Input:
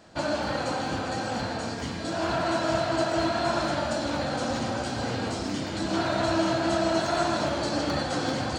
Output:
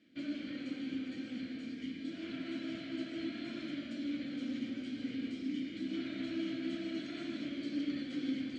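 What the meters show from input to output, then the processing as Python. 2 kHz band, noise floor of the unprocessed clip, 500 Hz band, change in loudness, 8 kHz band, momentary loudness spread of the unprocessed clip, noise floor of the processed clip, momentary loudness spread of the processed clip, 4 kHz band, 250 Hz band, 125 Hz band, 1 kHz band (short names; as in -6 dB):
-16.0 dB, -33 dBFS, -21.0 dB, -12.5 dB, under -25 dB, 5 LU, -46 dBFS, 4 LU, -14.5 dB, -6.5 dB, -20.0 dB, -31.0 dB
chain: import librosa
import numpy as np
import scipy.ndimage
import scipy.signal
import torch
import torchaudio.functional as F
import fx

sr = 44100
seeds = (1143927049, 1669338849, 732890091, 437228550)

y = fx.vowel_filter(x, sr, vowel='i')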